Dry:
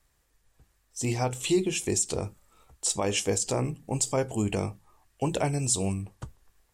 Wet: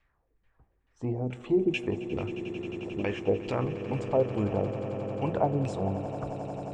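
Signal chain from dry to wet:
auto-filter low-pass saw down 2.3 Hz 240–2,800 Hz
echo that builds up and dies away 89 ms, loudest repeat 8, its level −16 dB
level −3 dB

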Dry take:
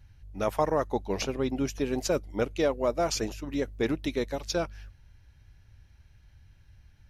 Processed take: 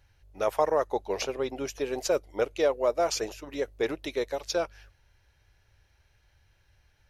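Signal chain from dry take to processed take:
low shelf with overshoot 320 Hz −9.5 dB, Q 1.5

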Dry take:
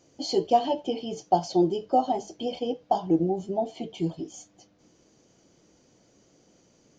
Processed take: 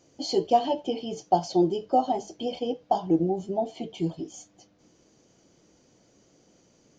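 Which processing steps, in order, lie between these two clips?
floating-point word with a short mantissa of 8 bits

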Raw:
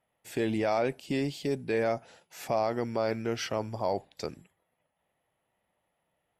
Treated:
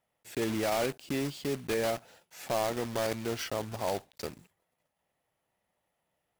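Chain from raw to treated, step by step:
one scale factor per block 3 bits
level −2.5 dB

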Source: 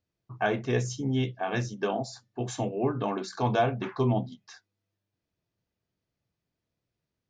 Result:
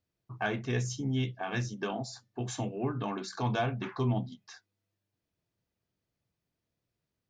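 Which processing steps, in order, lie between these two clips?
dynamic equaliser 530 Hz, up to −7 dB, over −39 dBFS, Q 0.93
in parallel at −9.5 dB: soft clipping −25 dBFS, distortion −14 dB
on the sum: level −3.5 dB

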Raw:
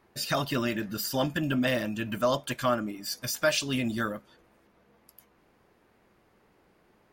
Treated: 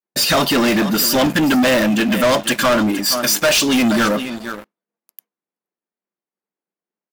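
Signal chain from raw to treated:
single-tap delay 472 ms −16.5 dB
downward expander −50 dBFS
linear-phase brick-wall high-pass 150 Hz
leveller curve on the samples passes 5
level +2 dB

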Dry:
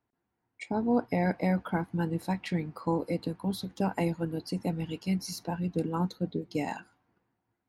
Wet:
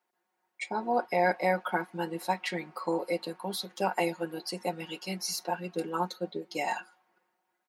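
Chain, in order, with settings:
high-pass filter 530 Hz 12 dB per octave
comb filter 5.5 ms, depth 84%
level +3.5 dB

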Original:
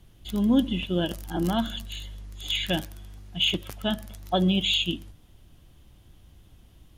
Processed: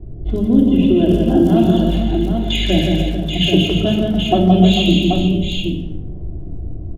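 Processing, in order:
low-pass that shuts in the quiet parts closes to 650 Hz, open at −23.5 dBFS
low shelf with overshoot 750 Hz +11 dB, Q 1.5
downward compressor 4 to 1, threshold −24 dBFS, peak gain reduction 16 dB
on a send: multi-tap delay 169/297/446/782/873 ms −3.5/−8.5/−10/−5.5/−20 dB
on the sum: rectangular room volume 2,500 cubic metres, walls furnished, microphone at 3.2 metres
level +7 dB

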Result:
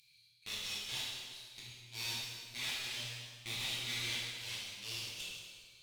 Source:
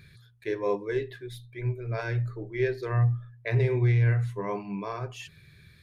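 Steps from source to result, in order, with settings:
adaptive Wiener filter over 25 samples
inverse Chebyshev high-pass filter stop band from 1,300 Hz, stop band 50 dB
tube saturation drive 56 dB, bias 0.6
dense smooth reverb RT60 1.7 s, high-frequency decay 0.95×, DRR −7.5 dB
level +16.5 dB

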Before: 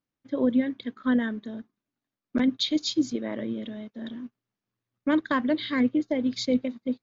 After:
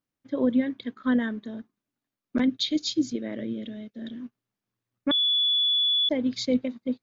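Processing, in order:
0:02.47–0:04.21: parametric band 1,000 Hz −12 dB 0.82 octaves
0:05.11–0:06.09: beep over 3,430 Hz −20 dBFS

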